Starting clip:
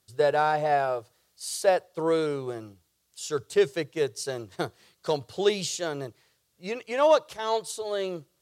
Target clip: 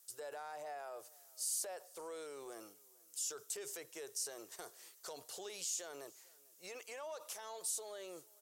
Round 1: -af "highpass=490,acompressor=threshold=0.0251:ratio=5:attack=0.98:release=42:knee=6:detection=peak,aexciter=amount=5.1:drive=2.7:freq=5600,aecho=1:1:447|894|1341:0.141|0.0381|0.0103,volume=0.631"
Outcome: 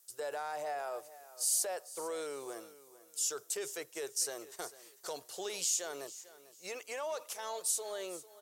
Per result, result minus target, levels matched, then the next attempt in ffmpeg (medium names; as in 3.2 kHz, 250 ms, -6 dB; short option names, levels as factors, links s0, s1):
compression: peak gain reduction -8 dB; echo-to-direct +8 dB
-af "highpass=490,acompressor=threshold=0.00794:ratio=5:attack=0.98:release=42:knee=6:detection=peak,aexciter=amount=5.1:drive=2.7:freq=5600,aecho=1:1:447|894|1341:0.141|0.0381|0.0103,volume=0.631"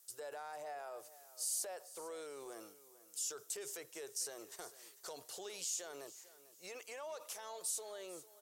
echo-to-direct +8 dB
-af "highpass=490,acompressor=threshold=0.00794:ratio=5:attack=0.98:release=42:knee=6:detection=peak,aexciter=amount=5.1:drive=2.7:freq=5600,aecho=1:1:447|894:0.0562|0.0152,volume=0.631"